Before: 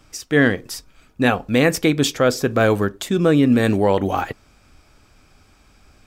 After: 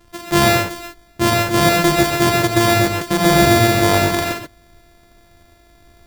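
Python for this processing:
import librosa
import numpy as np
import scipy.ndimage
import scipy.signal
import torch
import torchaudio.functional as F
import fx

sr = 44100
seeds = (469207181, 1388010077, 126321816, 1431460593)

y = np.r_[np.sort(x[:len(x) // 128 * 128].reshape(-1, 128), axis=1).ravel(), x[len(x) // 128 * 128:]]
y = fx.rev_gated(y, sr, seeds[0], gate_ms=160, shape='rising', drr_db=0.5)
y = y * 10.0 ** (1.0 / 20.0)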